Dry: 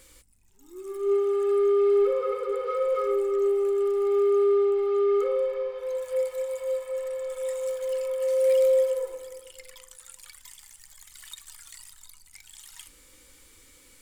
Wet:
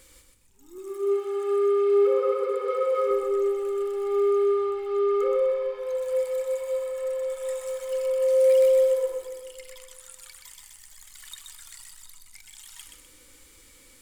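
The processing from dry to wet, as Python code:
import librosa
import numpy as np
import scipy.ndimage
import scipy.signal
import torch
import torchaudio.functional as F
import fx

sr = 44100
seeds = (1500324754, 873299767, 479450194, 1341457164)

y = fx.highpass(x, sr, hz=150.0, slope=12, at=(0.78, 3.11))
y = fx.echo_feedback(y, sr, ms=126, feedback_pct=38, wet_db=-5.0)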